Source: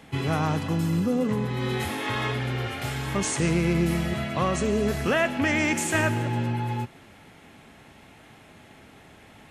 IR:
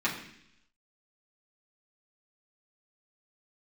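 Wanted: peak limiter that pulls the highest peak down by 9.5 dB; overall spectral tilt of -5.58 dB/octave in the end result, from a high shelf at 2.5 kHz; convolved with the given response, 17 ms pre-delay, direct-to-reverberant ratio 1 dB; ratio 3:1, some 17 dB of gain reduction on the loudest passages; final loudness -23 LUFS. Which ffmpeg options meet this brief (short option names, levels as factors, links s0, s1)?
-filter_complex "[0:a]highshelf=f=2500:g=-5.5,acompressor=threshold=0.00631:ratio=3,alimiter=level_in=4.22:limit=0.0631:level=0:latency=1,volume=0.237,asplit=2[s0][s1];[1:a]atrim=start_sample=2205,adelay=17[s2];[s1][s2]afir=irnorm=-1:irlink=0,volume=0.282[s3];[s0][s3]amix=inputs=2:normalize=0,volume=11.2"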